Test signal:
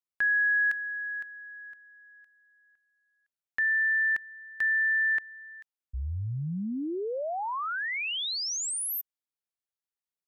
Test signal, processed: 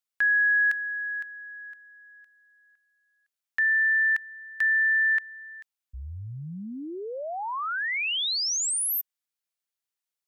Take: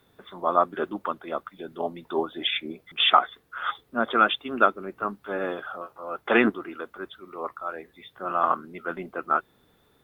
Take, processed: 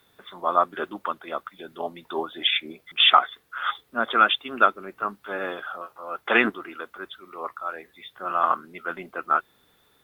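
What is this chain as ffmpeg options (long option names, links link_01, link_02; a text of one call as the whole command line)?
ffmpeg -i in.wav -af "tiltshelf=frequency=830:gain=-5" out.wav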